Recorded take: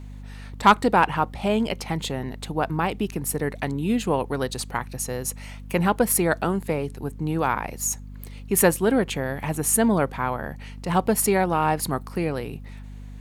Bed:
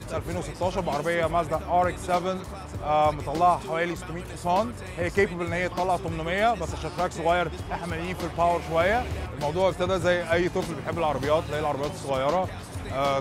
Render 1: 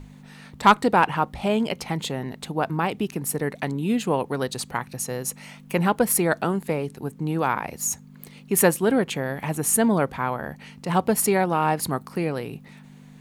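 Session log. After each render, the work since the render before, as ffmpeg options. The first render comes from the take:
-af "bandreject=f=50:t=h:w=6,bandreject=f=100:t=h:w=6"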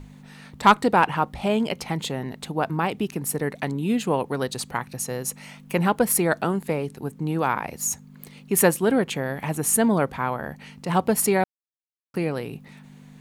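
-filter_complex "[0:a]asplit=3[a][b][c];[a]atrim=end=11.44,asetpts=PTS-STARTPTS,afade=t=out:st=11.436:d=0.004:c=hsin[d];[b]atrim=start=11.44:end=12.14,asetpts=PTS-STARTPTS,volume=0[e];[c]atrim=start=12.14,asetpts=PTS-STARTPTS,afade=t=in:d=0.004:c=hsin[f];[d][e][f]concat=n=3:v=0:a=1"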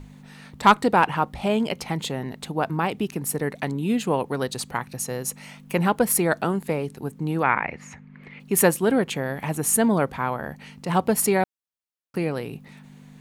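-filter_complex "[0:a]asplit=3[a][b][c];[a]afade=t=out:st=7.42:d=0.02[d];[b]lowpass=f=2.1k:t=q:w=3.3,afade=t=in:st=7.42:d=0.02,afade=t=out:st=8.39:d=0.02[e];[c]afade=t=in:st=8.39:d=0.02[f];[d][e][f]amix=inputs=3:normalize=0"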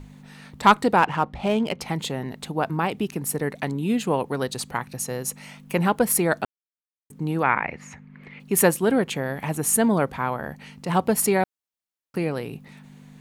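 -filter_complex "[0:a]asettb=1/sr,asplit=3[a][b][c];[a]atrim=end=0.984[d];[b]atrim=start=0.98:end=1.81,asetpts=PTS-STARTPTS,afade=t=in:d=0.004:c=qsin,afade=t=out:st=0.826:d=0.004:c=qsin,adynamicsmooth=sensitivity=8:basefreq=3.1k[e];[c]atrim=start=1.806[f];[d][e]acrossfade=d=0.004:c1=hsin:c2=qsin[g];[g][f]acrossfade=d=0.004:c1=qsin:c2=hsin,asplit=3[h][i][j];[h]atrim=end=6.45,asetpts=PTS-STARTPTS,afade=t=out:st=6.446:d=0.004:c=hsin[k];[i]atrim=start=6.45:end=7.1,asetpts=PTS-STARTPTS,volume=0[l];[j]atrim=start=7.1,asetpts=PTS-STARTPTS,afade=t=in:d=0.004:c=hsin[m];[k][l][m]concat=n=3:v=0:a=1"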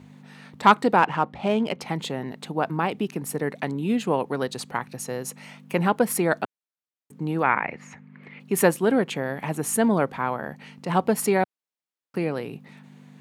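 -af "highpass=140,highshelf=f=5.8k:g=-8"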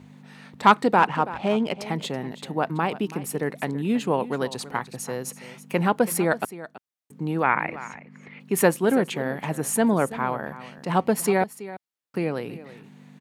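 -af "aecho=1:1:329:0.168"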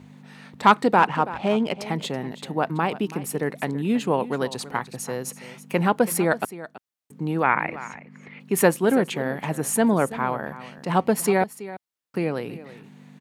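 -af "volume=1dB,alimiter=limit=-3dB:level=0:latency=1"

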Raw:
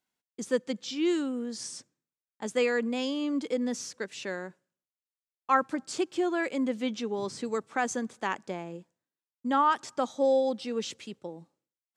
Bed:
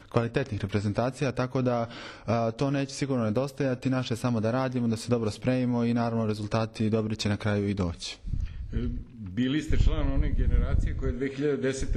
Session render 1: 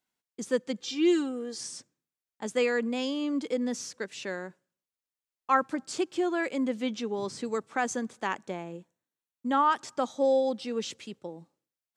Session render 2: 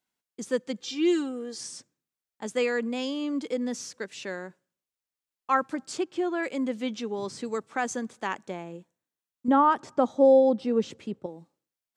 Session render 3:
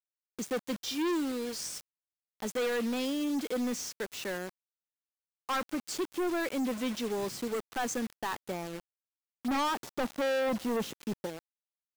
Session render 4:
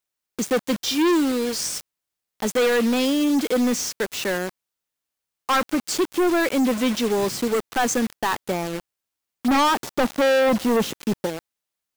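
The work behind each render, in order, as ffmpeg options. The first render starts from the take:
-filter_complex "[0:a]asettb=1/sr,asplit=3[a][b][c];[a]atrim=end=0.804[d];[b]atrim=start=0.8:end=1.61,asetpts=PTS-STARTPTS,afade=t=in:d=0.004:c=qsin,afade=t=out:st=0.806:d=0.004:c=qsin,aecho=1:1:2.5:0.65,atrim=end_sample=35721[e];[c]atrim=start=1.606[f];[d][e]acrossfade=d=0.004:c1=hsin:c2=qsin[g];[g][f]acrossfade=d=0.004:c1=qsin:c2=hsin,asettb=1/sr,asplit=3[h][i][j];[h]atrim=end=8.384[k];[i]atrim=start=8.38:end=9.57,asetpts=PTS-STARTPTS,afade=t=in:d=0.004:c=qsin,afade=t=out:st=1.186:d=0.004:c=qsin,asuperstop=centerf=4900:order=4:qfactor=7.9[l];[j]atrim=start=9.566[m];[k][l]acrossfade=d=0.004:c1=hsin:c2=qsin[n];[n][m]acrossfade=d=0.004:c1=qsin:c2=hsin"
-filter_complex "[0:a]asettb=1/sr,asplit=3[a][b][c];[a]atrim=end=5.974[d];[b]atrim=start=5.97:end=6.43,asetpts=PTS-STARTPTS,afade=t=in:d=0.004:c=qsin,afade=t=out:st=0.456:d=0.004:c=qsin,highshelf=f=5.2k:g=-10[e];[c]atrim=start=6.426[f];[d][e]acrossfade=d=0.004:c1=hsin:c2=qsin[g];[g][f]acrossfade=d=0.004:c1=qsin:c2=hsin,asettb=1/sr,asplit=3[h][i][j];[h]atrim=end=9.484[k];[i]atrim=start=9.48:end=11.26,asetpts=PTS-STARTPTS,afade=t=in:d=0.004:c=qsin,afade=t=out:st=1.776:d=0.004:c=qsin,tiltshelf=f=1.5k:g=8.5[l];[j]atrim=start=11.256[m];[k][l]acrossfade=d=0.004:c1=hsin:c2=qsin[n];[n][m]acrossfade=d=0.004:c1=qsin:c2=hsin"
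-af "acrusher=bits=6:mix=0:aa=0.000001,volume=28dB,asoftclip=hard,volume=-28dB"
-af "volume=11.5dB"

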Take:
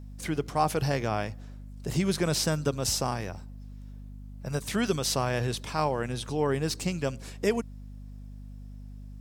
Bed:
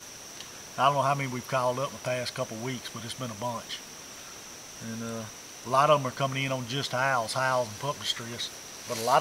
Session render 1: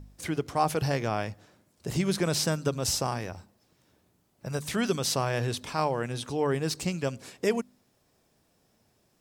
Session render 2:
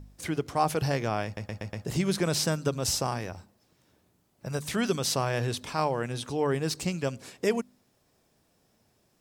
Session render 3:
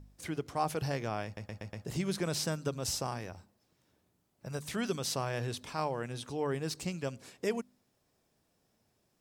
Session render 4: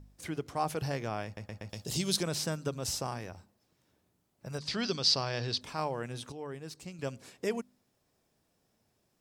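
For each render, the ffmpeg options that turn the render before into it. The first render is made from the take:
-af "bandreject=f=50:t=h:w=4,bandreject=f=100:t=h:w=4,bandreject=f=150:t=h:w=4,bandreject=f=200:t=h:w=4,bandreject=f=250:t=h:w=4"
-filter_complex "[0:a]asplit=6[a][b][c][d][e][f];[a]atrim=end=1.372[g];[b]atrim=start=1.248:end=1.372[h];[c]atrim=start=1.248:end=1.372[i];[d]atrim=start=1.248:end=1.372[j];[e]atrim=start=1.248:end=1.372[k];[f]atrim=start=1.848[l];[g][h]acrossfade=d=0.004:c1=hsin:c2=hsin[m];[m][i]acrossfade=d=0.004:c1=hsin:c2=hsin[n];[n][j]acrossfade=d=0.004:c1=hsin:c2=hsin[o];[o][k]acrossfade=d=0.004:c1=hsin:c2=hsin[p];[p][l]acrossfade=d=0.004:c1=hsin:c2=hsin"
-af "volume=-6.5dB"
-filter_complex "[0:a]asettb=1/sr,asplit=3[a][b][c];[a]atrim=end=1.694[d];[b]atrim=start=1.69:end=2.23,asetpts=PTS-STARTPTS,afade=t=in:d=0.004:c=qsin,afade=t=out:st=0.536:d=0.004:c=qsin,highshelf=f=2.7k:t=q:w=1.5:g=10[e];[c]atrim=start=2.226[f];[d][e]acrossfade=d=0.004:c1=hsin:c2=qsin[g];[g][f]acrossfade=d=0.004:c1=qsin:c2=hsin,asettb=1/sr,asplit=3[h][i][j];[h]atrim=end=4.584[k];[i]atrim=start=4.58:end=5.61,asetpts=PTS-STARTPTS,afade=t=in:d=0.004:c=qsin,afade=t=out:st=1.026:d=0.004:c=qsin,lowpass=f=4.7k:t=q:w=6.3[l];[j]atrim=start=5.606[m];[k][l]acrossfade=d=0.004:c1=hsin:c2=qsin[n];[n][m]acrossfade=d=0.004:c1=qsin:c2=hsin,asplit=3[o][p][q];[o]atrim=end=6.322[r];[p]atrim=start=6.318:end=6.992,asetpts=PTS-STARTPTS,volume=-8dB[s];[q]atrim=start=6.988[t];[r][s]acrossfade=d=0.004:c1=hsin:c2=hsin[u];[u][t]acrossfade=d=0.004:c1=hsin:c2=hsin"

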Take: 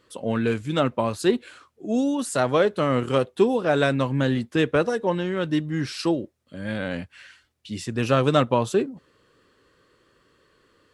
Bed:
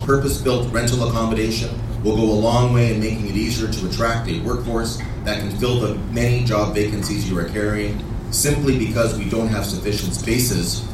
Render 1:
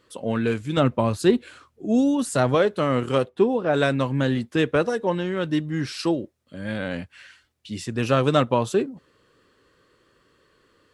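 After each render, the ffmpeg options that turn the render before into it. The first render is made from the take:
-filter_complex "[0:a]asettb=1/sr,asplit=3[a][b][c];[a]atrim=end=0.774[d];[b]atrim=start=0.77:end=2.55,asetpts=PTS-STARTPTS,afade=t=in:d=0.004:c=qsin,afade=t=out:st=1.776:d=0.004:c=qsin,lowshelf=f=210:g=9[e];[c]atrim=start=2.546[f];[d][e]acrossfade=d=0.004:c1=hsin:c2=qsin[g];[g][f]acrossfade=d=0.004:c1=qsin:c2=hsin,asplit=3[h][i][j];[h]afade=t=out:st=3.28:d=0.02[k];[i]lowpass=f=1.8k:p=1,afade=t=in:st=3.28:d=0.02,afade=t=out:st=3.73:d=0.02[l];[j]afade=t=in:st=3.73:d=0.02[m];[k][l][m]amix=inputs=3:normalize=0"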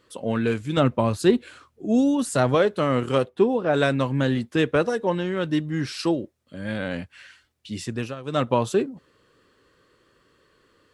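-filter_complex "[0:a]asplit=3[a][b][c];[a]atrim=end=8.15,asetpts=PTS-STARTPTS,afade=t=out:st=7.9:d=0.25:silence=0.133352[d];[b]atrim=start=8.15:end=8.24,asetpts=PTS-STARTPTS,volume=-17.5dB[e];[c]atrim=start=8.24,asetpts=PTS-STARTPTS,afade=t=in:d=0.25:silence=0.133352[f];[d][e][f]concat=n=3:v=0:a=1"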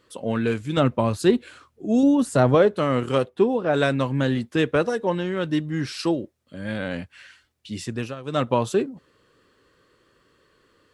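-filter_complex "[0:a]asettb=1/sr,asplit=3[a][b][c];[a]atrim=end=2.034[d];[b]atrim=start=2.03:end=2.77,asetpts=PTS-STARTPTS,afade=t=in:d=0.004:c=qsin,afade=t=out:st=0.736:d=0.004:c=qsin,tiltshelf=f=1.4k:g=4[e];[c]atrim=start=2.766[f];[d][e]acrossfade=d=0.004:c1=hsin:c2=qsin[g];[g][f]acrossfade=d=0.004:c1=qsin:c2=hsin"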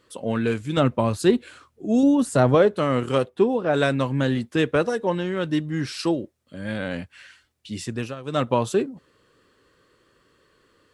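-af "equalizer=f=8.8k:w=1.5:g=2"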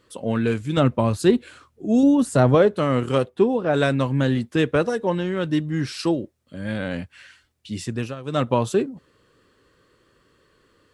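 -af "lowshelf=f=220:g=4"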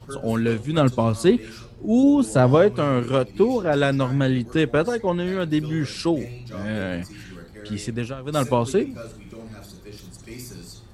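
-filter_complex "[1:a]volume=-19.5dB[a];[0:a][a]amix=inputs=2:normalize=0"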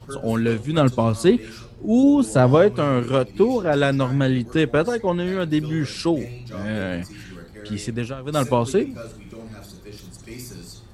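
-af "volume=1dB"

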